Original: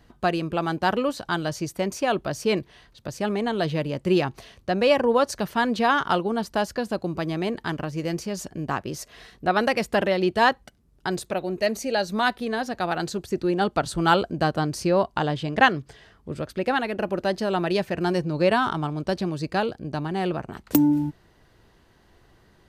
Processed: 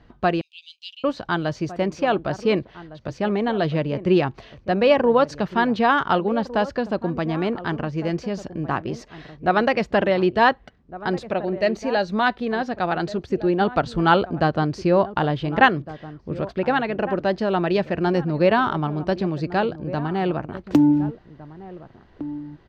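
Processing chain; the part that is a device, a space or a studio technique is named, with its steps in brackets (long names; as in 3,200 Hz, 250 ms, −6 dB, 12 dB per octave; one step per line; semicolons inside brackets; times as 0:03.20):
shout across a valley (high-frequency loss of the air 190 metres; slap from a distant wall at 250 metres, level −15 dB)
0:00.41–0:01.04: Butterworth high-pass 2,700 Hz 72 dB per octave
level +3.5 dB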